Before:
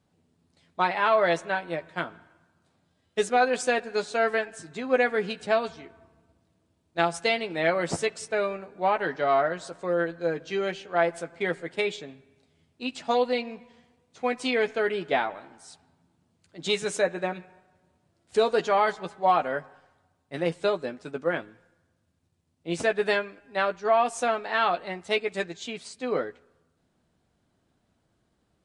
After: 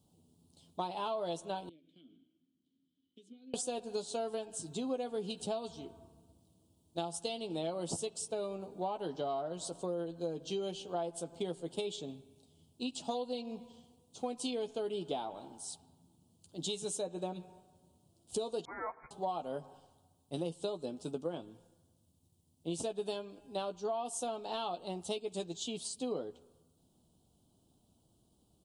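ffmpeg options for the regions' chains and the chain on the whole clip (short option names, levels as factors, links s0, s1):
-filter_complex "[0:a]asettb=1/sr,asplit=3[s0][s1][s2];[s0]atrim=end=1.694[s3];[s1]atrim=start=1.69:end=3.54,asetpts=PTS-STARTPTS,afade=t=in:d=0.004:c=qsin,afade=t=out:st=1.846:d=0.004:c=qsin,equalizer=f=1200:w=1.3:g=-5.5,acompressor=threshold=0.0112:ratio=6:attack=3.2:release=140:knee=1:detection=peak,asplit=3[s4][s5][s6];[s4]bandpass=f=270:t=q:w=8,volume=1[s7];[s5]bandpass=f=2290:t=q:w=8,volume=0.501[s8];[s6]bandpass=f=3010:t=q:w=8,volume=0.355[s9];[s7][s8][s9]amix=inputs=3:normalize=0[s10];[s2]atrim=start=3.536[s11];[s3][s10]acrossfade=d=0.004:c1=hsin:c2=qsin[s12];[s12][s11]acrossfade=d=0.004:c1=qsin:c2=hsin,asettb=1/sr,asplit=3[s13][s14][s15];[s13]atrim=end=18.654[s16];[s14]atrim=start=18.65:end=19.11,asetpts=PTS-STARTPTS,afade=t=in:d=0.004:c=qsin,afade=t=out:st=0.456:d=0.004:c=qsin,highpass=580,lowpass=f=2200:t=q:w=0.5098,lowpass=f=2200:t=q:w=0.6013,lowpass=f=2200:t=q:w=0.9,lowpass=f=2200:t=q:w=2.563,afreqshift=-2600[s17];[s15]atrim=start=19.106[s18];[s16][s17]acrossfade=d=0.004:c1=hsin:c2=qsin[s19];[s19][s18]acrossfade=d=0.004:c1=qsin:c2=hsin,firequalizer=gain_entry='entry(300,0);entry(560,-4);entry(860,-2);entry(1900,-28);entry(3000,2);entry(5500,4);entry(9700,11)':delay=0.05:min_phase=1,acompressor=threshold=0.0178:ratio=6,equalizer=f=5900:w=0.51:g=-3.5,volume=1.12"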